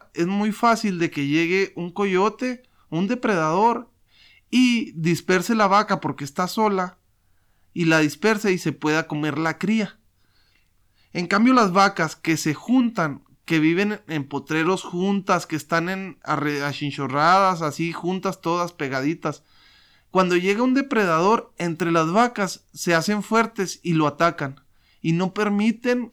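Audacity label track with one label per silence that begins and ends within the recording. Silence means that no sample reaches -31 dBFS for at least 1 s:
9.890000	11.150000	silence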